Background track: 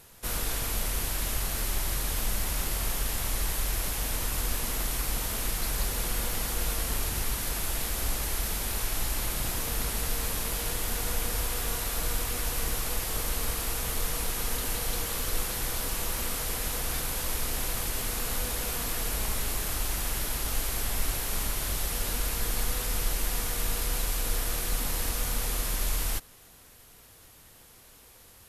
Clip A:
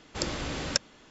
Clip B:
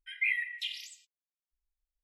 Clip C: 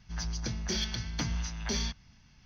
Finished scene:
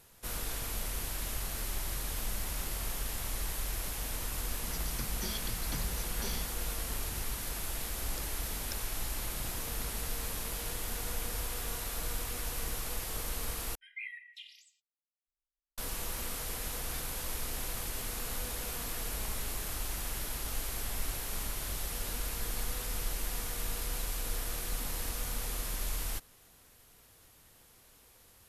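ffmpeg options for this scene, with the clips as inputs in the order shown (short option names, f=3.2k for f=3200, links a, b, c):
-filter_complex "[0:a]volume=-6.5dB,asplit=2[a][b];[a]atrim=end=13.754[c];[2:a]atrim=end=2.03,asetpts=PTS-STARTPTS,volume=-13dB[d];[b]atrim=start=15.776[e];[3:a]atrim=end=2.45,asetpts=PTS-STARTPTS,volume=-8dB,afade=t=in:d=0.004:c=hsin,afade=t=out:st=2.446:d=0.004:c=hsin,adelay=199773S[f];[1:a]atrim=end=1.1,asetpts=PTS-STARTPTS,volume=-18dB,afade=t=in:d=0.004:c=hsin,afade=t=out:st=1.096:d=0.004:c=hsin,adelay=7960[g];[c][d]acrossfade=d=0.004:c1=hsin:c2=hsin[h];[h][e]acrossfade=d=0.004:c1=hsin:c2=hsin[i];[i][f][g]amix=inputs=3:normalize=0"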